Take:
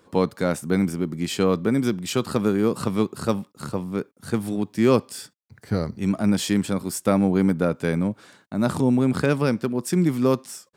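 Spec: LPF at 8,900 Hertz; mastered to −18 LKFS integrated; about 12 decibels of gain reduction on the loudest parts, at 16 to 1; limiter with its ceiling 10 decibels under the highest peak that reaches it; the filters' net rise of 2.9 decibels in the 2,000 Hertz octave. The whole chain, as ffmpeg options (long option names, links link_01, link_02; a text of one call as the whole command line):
ffmpeg -i in.wav -af "lowpass=8900,equalizer=frequency=2000:width_type=o:gain=4,acompressor=threshold=-26dB:ratio=16,volume=16.5dB,alimiter=limit=-7dB:level=0:latency=1" out.wav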